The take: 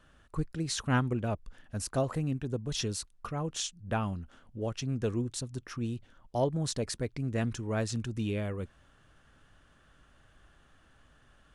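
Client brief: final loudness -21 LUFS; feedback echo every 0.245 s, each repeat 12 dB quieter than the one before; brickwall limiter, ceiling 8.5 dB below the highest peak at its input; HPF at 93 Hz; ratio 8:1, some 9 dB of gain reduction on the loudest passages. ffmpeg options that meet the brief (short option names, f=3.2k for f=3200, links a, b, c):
-af "highpass=93,acompressor=threshold=-32dB:ratio=8,alimiter=level_in=6.5dB:limit=-24dB:level=0:latency=1,volume=-6.5dB,aecho=1:1:245|490|735:0.251|0.0628|0.0157,volume=19.5dB"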